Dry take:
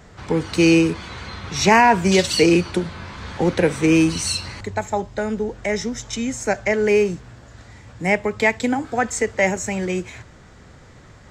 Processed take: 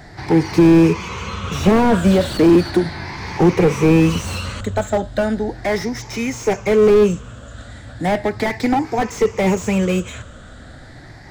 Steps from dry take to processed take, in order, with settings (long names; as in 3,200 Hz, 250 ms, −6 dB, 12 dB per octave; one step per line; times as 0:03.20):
rippled gain that drifts along the octave scale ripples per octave 0.78, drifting +0.36 Hz, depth 11 dB
slew-rate limiting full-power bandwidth 81 Hz
level +5 dB